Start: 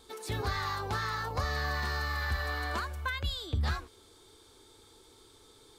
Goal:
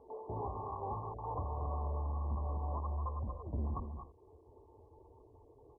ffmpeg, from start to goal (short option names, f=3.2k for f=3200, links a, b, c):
-filter_complex "[0:a]bandreject=f=50:t=h:w=6,bandreject=f=100:t=h:w=6,bandreject=f=150:t=h:w=6,bandreject=f=200:t=h:w=6,bandreject=f=250:t=h:w=6,bandreject=f=300:t=h:w=6,bandreject=f=350:t=h:w=6,afftdn=nr=16:nf=-55,lowshelf=f=420:g=-11,acrossover=split=490|3300[a][b][c];[b]asoftclip=type=tanh:threshold=-38dB[d];[a][d][c]amix=inputs=3:normalize=0,asubboost=boost=4.5:cutoff=140,acompressor=mode=upward:threshold=-52dB:ratio=2.5,volume=36dB,asoftclip=hard,volume=-36dB,highpass=61,asplit=2[e][f];[f]aecho=0:1:234:0.447[g];[e][g]amix=inputs=2:normalize=0,volume=3.5dB" -ar 24000 -c:a mp2 -b:a 8k